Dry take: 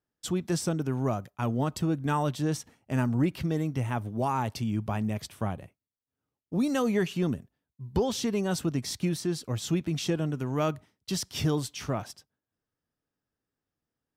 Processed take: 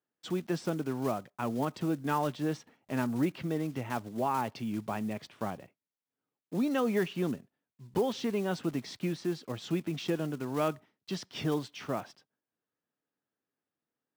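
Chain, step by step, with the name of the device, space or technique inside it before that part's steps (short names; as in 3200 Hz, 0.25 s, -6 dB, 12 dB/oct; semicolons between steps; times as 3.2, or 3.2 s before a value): early digital voice recorder (BPF 200–3400 Hz; block floating point 5-bit); gain -1.5 dB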